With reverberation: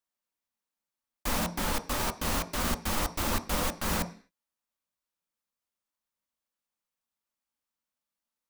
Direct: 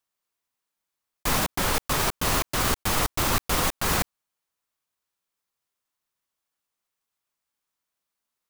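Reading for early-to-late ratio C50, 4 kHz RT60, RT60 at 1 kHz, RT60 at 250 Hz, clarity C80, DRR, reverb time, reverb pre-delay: 15.5 dB, can't be measured, 0.45 s, 0.55 s, 19.5 dB, 7.0 dB, 0.45 s, 3 ms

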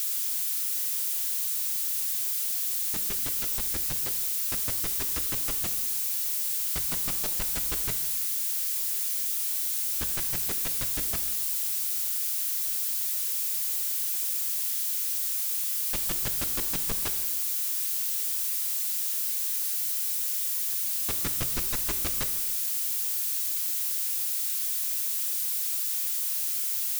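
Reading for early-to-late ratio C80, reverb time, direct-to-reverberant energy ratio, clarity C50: 11.5 dB, 1.3 s, 8.0 dB, 10.5 dB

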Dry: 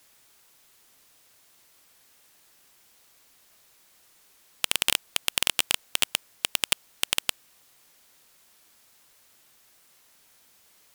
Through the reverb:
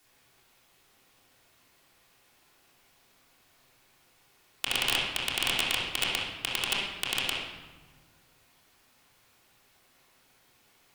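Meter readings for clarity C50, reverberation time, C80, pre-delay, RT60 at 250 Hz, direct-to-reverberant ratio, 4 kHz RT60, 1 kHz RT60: −0.5 dB, 1.3 s, 3.0 dB, 3 ms, 2.0 s, −8.0 dB, 0.90 s, 1.3 s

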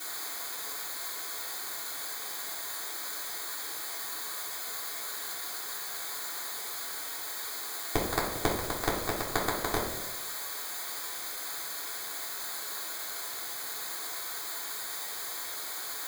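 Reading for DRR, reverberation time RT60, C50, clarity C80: −7.5 dB, 0.95 s, 4.5 dB, 8.0 dB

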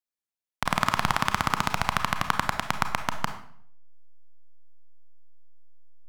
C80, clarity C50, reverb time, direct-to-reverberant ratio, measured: 12.5 dB, 9.5 dB, 0.60 s, 7.0 dB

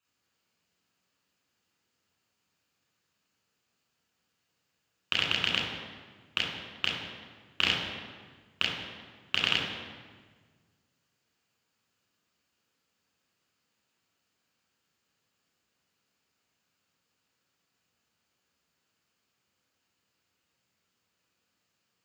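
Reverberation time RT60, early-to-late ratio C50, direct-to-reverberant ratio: 1.5 s, 1.5 dB, −4.0 dB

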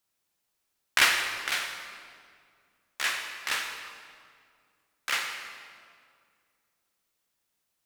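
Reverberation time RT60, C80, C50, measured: 2.1 s, 5.5 dB, 4.5 dB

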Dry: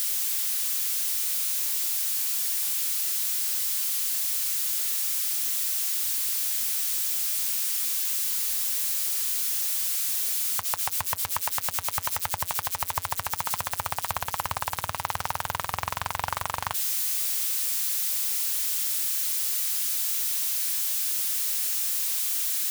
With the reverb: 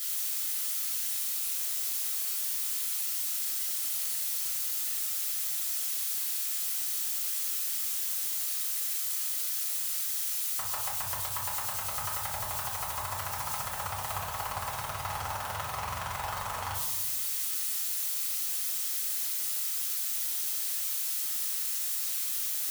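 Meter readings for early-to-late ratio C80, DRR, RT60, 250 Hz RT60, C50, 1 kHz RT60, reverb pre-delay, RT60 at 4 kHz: 7.0 dB, −5.5 dB, 1.0 s, 1.7 s, 4.0 dB, 0.90 s, 4 ms, 0.55 s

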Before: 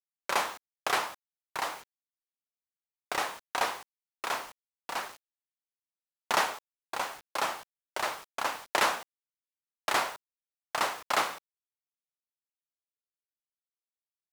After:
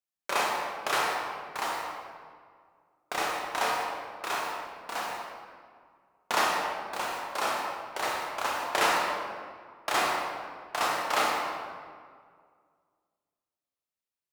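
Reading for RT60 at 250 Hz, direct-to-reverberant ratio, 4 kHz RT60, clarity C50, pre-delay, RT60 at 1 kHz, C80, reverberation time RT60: 2.2 s, −2.5 dB, 1.2 s, 0.0 dB, 19 ms, 1.9 s, 2.0 dB, 2.0 s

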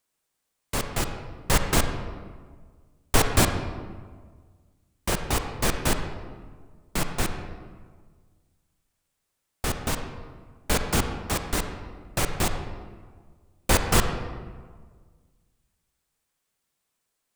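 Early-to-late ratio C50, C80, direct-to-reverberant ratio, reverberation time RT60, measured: 6.5 dB, 8.0 dB, 6.0 dB, 1.6 s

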